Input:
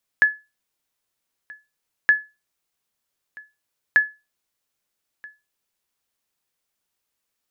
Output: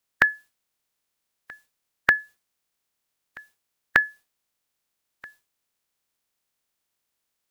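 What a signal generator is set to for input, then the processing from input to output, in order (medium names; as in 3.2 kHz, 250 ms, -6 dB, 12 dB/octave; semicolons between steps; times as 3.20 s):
sonar ping 1.71 kHz, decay 0.25 s, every 1.87 s, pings 3, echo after 1.28 s, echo -25 dB -7 dBFS
spectral peaks clipped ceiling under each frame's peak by 17 dB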